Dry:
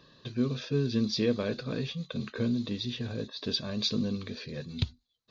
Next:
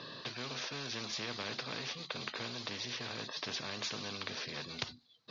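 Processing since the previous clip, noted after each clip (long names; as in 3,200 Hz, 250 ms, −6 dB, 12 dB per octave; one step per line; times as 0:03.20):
Chebyshev band-pass filter 120–5,100 Hz, order 3
every bin compressed towards the loudest bin 4 to 1
level −3 dB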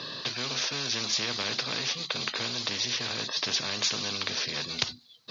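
high-shelf EQ 4,000 Hz +11 dB
level +6 dB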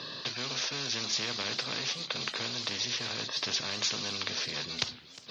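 feedback echo with a swinging delay time 358 ms, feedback 55%, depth 219 cents, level −18.5 dB
level −3 dB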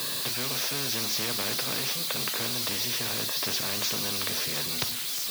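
spike at every zero crossing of −20 dBFS
high-shelf EQ 2,000 Hz −10 dB
level +5 dB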